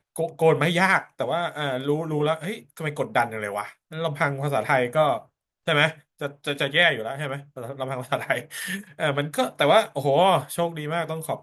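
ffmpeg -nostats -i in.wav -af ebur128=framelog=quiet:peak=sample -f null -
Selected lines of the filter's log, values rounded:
Integrated loudness:
  I:         -24.0 LUFS
  Threshold: -34.3 LUFS
Loudness range:
  LRA:         2.8 LU
  Threshold: -44.8 LUFS
  LRA low:   -26.2 LUFS
  LRA high:  -23.4 LUFS
Sample peak:
  Peak:       -5.7 dBFS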